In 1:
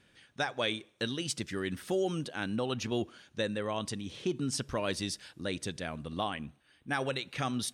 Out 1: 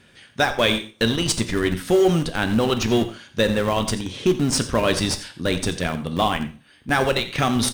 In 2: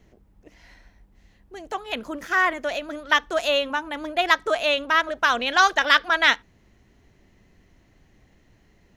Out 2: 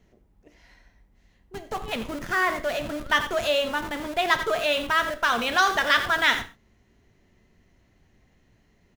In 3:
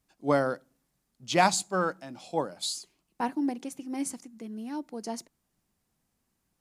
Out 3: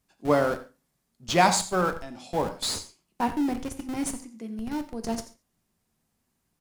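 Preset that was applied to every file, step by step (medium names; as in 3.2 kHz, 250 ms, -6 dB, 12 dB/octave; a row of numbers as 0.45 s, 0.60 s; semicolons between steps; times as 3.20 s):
delay 87 ms -14.5 dB; in parallel at -6.5 dB: Schmitt trigger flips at -32 dBFS; on the sum: gated-style reverb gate 160 ms falling, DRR 8 dB; peak normalisation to -6 dBFS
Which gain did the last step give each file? +11.0 dB, -4.5 dB, +1.0 dB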